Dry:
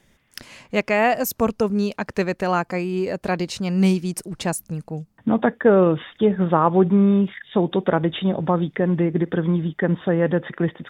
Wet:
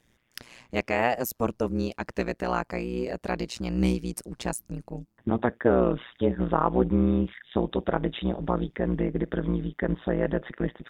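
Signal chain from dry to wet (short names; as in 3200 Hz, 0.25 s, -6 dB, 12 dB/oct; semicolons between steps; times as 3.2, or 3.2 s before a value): AM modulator 120 Hz, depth 100%; gain -2.5 dB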